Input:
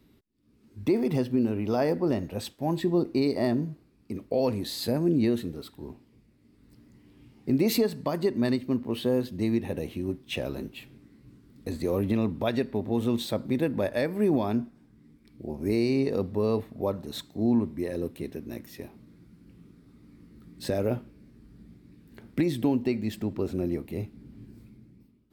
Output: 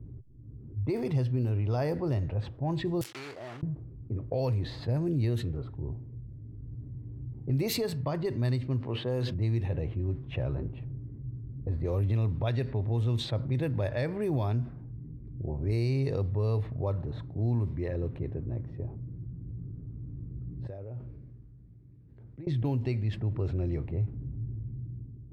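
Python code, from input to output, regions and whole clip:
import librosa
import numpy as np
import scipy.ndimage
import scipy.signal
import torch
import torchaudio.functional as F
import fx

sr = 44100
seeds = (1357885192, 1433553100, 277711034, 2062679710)

y = fx.chain(x, sr, fx.block_float(bits=3),
    fx.highpass(hz=60.0, slope=12),
    fx.differentiator(), at=(3.01, 3.63))
y = fx.chain(y, sr, fx.highpass(hz=280.0, slope=6),
    fx.sustainer(db_per_s=68.0), at=(8.81, 9.34))
y = fx.chain(y, sr, fx.pre_emphasis(coefficient=0.97),
    fx.sustainer(db_per_s=45.0), at=(20.67, 22.47))
y = fx.env_lowpass(y, sr, base_hz=370.0, full_db=-20.5)
y = fx.low_shelf_res(y, sr, hz=160.0, db=8.5, q=3.0)
y = fx.env_flatten(y, sr, amount_pct=50)
y = F.gain(torch.from_numpy(y), -9.0).numpy()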